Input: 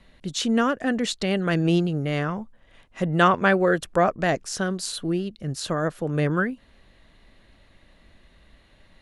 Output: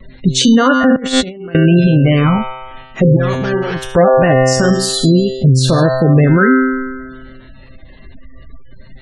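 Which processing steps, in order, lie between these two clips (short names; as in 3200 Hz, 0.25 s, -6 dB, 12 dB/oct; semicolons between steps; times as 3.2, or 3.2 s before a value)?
bin magnitudes rounded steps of 15 dB; reverb removal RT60 0.51 s; 3.16–3.87 tube stage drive 35 dB, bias 0.4; vibrato 0.62 Hz 15 cents; 4.45–4.9 de-hum 94.76 Hz, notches 25; resonator 130 Hz, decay 1.5 s, mix 90%; spectral gate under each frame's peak -25 dB strong; dynamic EQ 100 Hz, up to +5 dB, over -59 dBFS, Q 0.76; 0.96–1.55 negative-ratio compressor -50 dBFS, ratio -0.5; low shelf 330 Hz +6 dB; maximiser +32 dB; gain -1 dB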